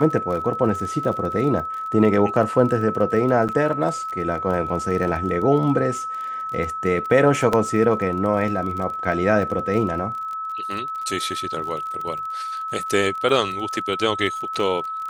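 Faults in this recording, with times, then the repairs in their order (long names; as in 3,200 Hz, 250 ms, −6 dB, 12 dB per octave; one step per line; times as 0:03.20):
surface crackle 32 per second −29 dBFS
whistle 1,300 Hz −26 dBFS
0:03.48–0:03.49: drop-out 8 ms
0:07.53: drop-out 2.9 ms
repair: click removal
notch filter 1,300 Hz, Q 30
repair the gap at 0:03.48, 8 ms
repair the gap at 0:07.53, 2.9 ms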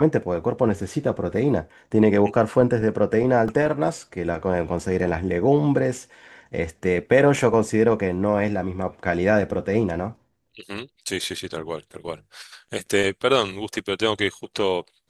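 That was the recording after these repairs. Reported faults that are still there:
none of them is left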